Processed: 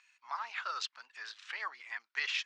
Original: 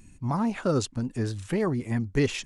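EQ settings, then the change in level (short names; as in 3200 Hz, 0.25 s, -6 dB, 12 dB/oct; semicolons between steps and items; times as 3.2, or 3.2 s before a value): HPF 1200 Hz 24 dB/oct; LPF 4800 Hz 24 dB/oct; +1.0 dB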